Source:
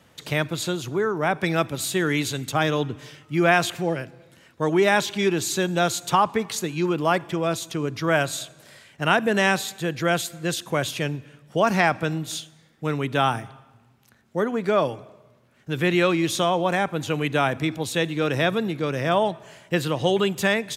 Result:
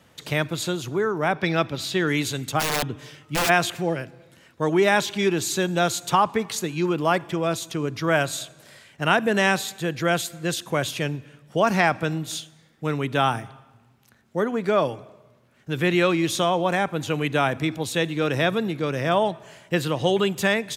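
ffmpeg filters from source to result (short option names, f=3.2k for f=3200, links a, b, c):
-filter_complex "[0:a]asettb=1/sr,asplit=3[a][b][c];[a]atrim=end=1.344[d];[b]atrim=start=1.34:end=2.08,asetpts=PTS-STARTPTS,afade=t=in:d=0.004:c=qsin,afade=t=out:st=0.736:d=0.004:c=qsin,highshelf=f=6.4k:t=q:w=1.5:g=-8.5[e];[c]atrim=start=2.076[f];[d][e]acrossfade=d=0.004:c1=hsin:c2=qsin[g];[g][f]acrossfade=d=0.004:c1=qsin:c2=hsin,asplit=3[h][i][j];[h]afade=t=out:st=2.59:d=0.02[k];[i]aeval=exprs='(mod(7.5*val(0)+1,2)-1)/7.5':c=same,afade=t=in:st=2.59:d=0.02,afade=t=out:st=3.48:d=0.02[l];[j]afade=t=in:st=3.48:d=0.02[m];[k][l][m]amix=inputs=3:normalize=0"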